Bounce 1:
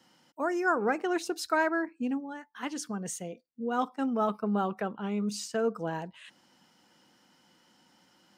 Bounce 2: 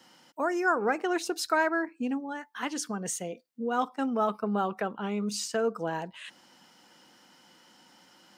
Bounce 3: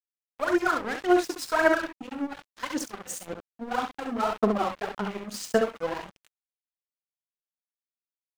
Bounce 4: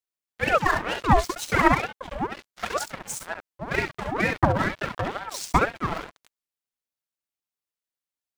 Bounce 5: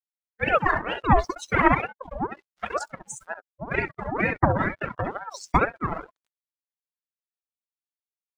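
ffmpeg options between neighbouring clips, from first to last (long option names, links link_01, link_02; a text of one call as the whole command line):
ffmpeg -i in.wav -filter_complex "[0:a]lowshelf=frequency=210:gain=-8,asplit=2[link_01][link_02];[link_02]acompressor=threshold=-39dB:ratio=6,volume=1dB[link_03];[link_01][link_03]amix=inputs=2:normalize=0" out.wav
ffmpeg -i in.wav -af "aphaser=in_gain=1:out_gain=1:delay=4:decay=0.75:speed=1.8:type=sinusoidal,aecho=1:1:42|67:0.299|0.562,aeval=exprs='sgn(val(0))*max(abs(val(0))-0.0266,0)':channel_layout=same,volume=-1.5dB" out.wav
ffmpeg -i in.wav -af "aeval=exprs='val(0)*sin(2*PI*740*n/s+740*0.6/2.1*sin(2*PI*2.1*n/s))':channel_layout=same,volume=5.5dB" out.wav
ffmpeg -i in.wav -af "afftdn=noise_reduction=23:noise_floor=-33" out.wav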